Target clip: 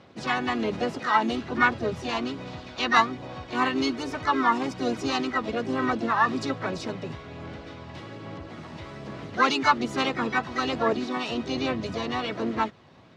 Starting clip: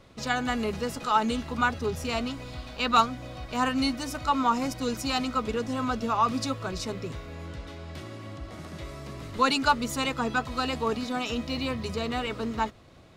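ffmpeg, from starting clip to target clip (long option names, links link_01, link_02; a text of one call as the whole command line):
ffmpeg -i in.wav -filter_complex "[0:a]asplit=3[link_01][link_02][link_03];[link_02]asetrate=52444,aresample=44100,atempo=0.840896,volume=-10dB[link_04];[link_03]asetrate=66075,aresample=44100,atempo=0.66742,volume=-5dB[link_05];[link_01][link_04][link_05]amix=inputs=3:normalize=0,highpass=130,lowpass=4300,aphaser=in_gain=1:out_gain=1:delay=1.1:decay=0.22:speed=1.2:type=sinusoidal" out.wav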